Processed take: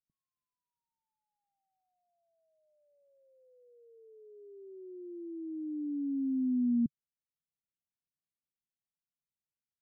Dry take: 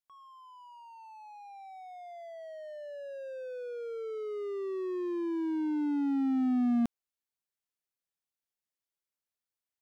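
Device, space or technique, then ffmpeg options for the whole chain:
the neighbour's flat through the wall: -af "lowpass=frequency=270:width=0.5412,lowpass=frequency=270:width=1.3066,equalizer=frequency=150:width_type=o:width=0.89:gain=7,volume=-2dB"

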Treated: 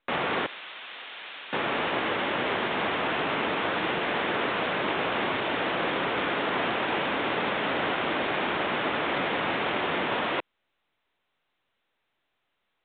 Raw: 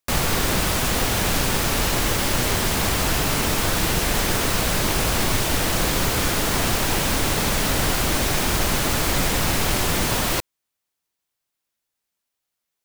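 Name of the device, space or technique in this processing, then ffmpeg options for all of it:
telephone: -filter_complex "[0:a]asettb=1/sr,asplit=3[link_01][link_02][link_03];[link_01]atrim=end=0.464[link_04];[link_02]atrim=start=0.46:end=1.53,asetpts=PTS-STARTPTS,afade=type=in:duration=0.004:curve=qsin,afade=type=out:start_time=1.066:duration=0.004:curve=qsin,aderivative[link_05];[link_03]atrim=start=1.526[link_06];[link_04][link_05]acrossfade=duration=0.004:curve1=hsin:curve2=qsin[link_07];[link_07][link_06]acrossfade=duration=0.004:curve1=qsin:curve2=hsin,highpass=300,lowpass=3100,volume=-1.5dB" -ar 8000 -c:a pcm_mulaw

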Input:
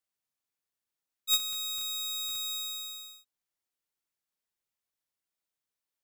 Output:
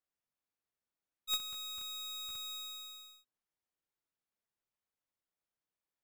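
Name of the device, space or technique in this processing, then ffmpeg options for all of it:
through cloth: -af "highshelf=frequency=2900:gain=-12"

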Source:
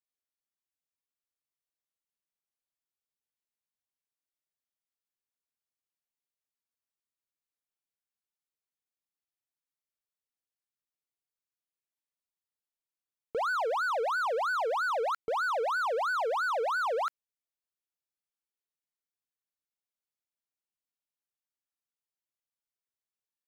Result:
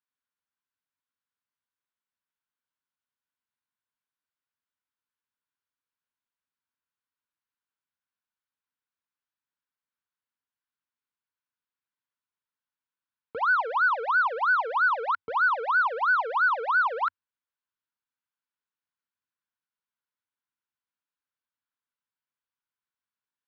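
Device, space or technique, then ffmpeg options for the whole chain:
guitar cabinet: -af "highpass=87,equalizer=frequency=92:width_type=q:width=4:gain=7,equalizer=frequency=260:width_type=q:width=4:gain=4,equalizer=frequency=370:width_type=q:width=4:gain=-8,equalizer=frequency=660:width_type=q:width=4:gain=-8,equalizer=frequency=1000:width_type=q:width=4:gain=8,equalizer=frequency=1500:width_type=q:width=4:gain=9,lowpass=frequency=4100:width=0.5412,lowpass=frequency=4100:width=1.3066"

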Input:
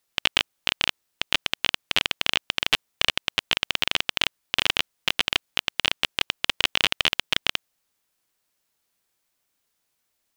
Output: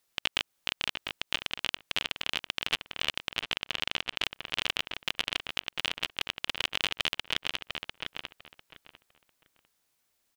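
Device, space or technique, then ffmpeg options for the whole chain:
stacked limiters: -filter_complex "[0:a]asettb=1/sr,asplit=3[link_01][link_02][link_03];[link_01]atrim=end=3.434[link_04];[link_02]atrim=start=3.43:end=4.23,asetpts=PTS-STARTPTS,afade=type=in:duration=0.004:curve=qsin,afade=type=out:start_time=0.796:duration=0.004:curve=qsin,highshelf=frequency=8500:gain=-7.5[link_05];[link_03]atrim=start=4.226[link_06];[link_04][link_05]acrossfade=duration=0.004:curve1=hsin:curve2=qsin[link_07];[link_07][link_06]acrossfade=duration=0.004:curve1=qsin:curve2=hsin,asplit=2[link_08][link_09];[link_09]adelay=699,lowpass=frequency=2700:poles=1,volume=-11.5dB,asplit=2[link_10][link_11];[link_11]adelay=699,lowpass=frequency=2700:poles=1,volume=0.23,asplit=2[link_12][link_13];[link_13]adelay=699,lowpass=frequency=2700:poles=1,volume=0.23[link_14];[link_08][link_10][link_12][link_14]amix=inputs=4:normalize=0,alimiter=limit=-7dB:level=0:latency=1:release=80,alimiter=limit=-10dB:level=0:latency=1:release=169"

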